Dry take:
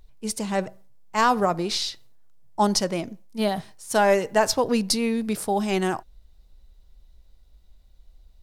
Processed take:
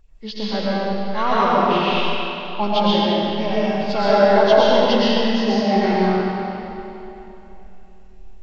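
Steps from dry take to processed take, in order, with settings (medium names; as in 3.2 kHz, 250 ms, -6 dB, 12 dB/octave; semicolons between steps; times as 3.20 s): knee-point frequency compression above 1.2 kHz 1.5:1; algorithmic reverb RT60 3.2 s, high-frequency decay 0.8×, pre-delay 75 ms, DRR -8 dB; trim -2.5 dB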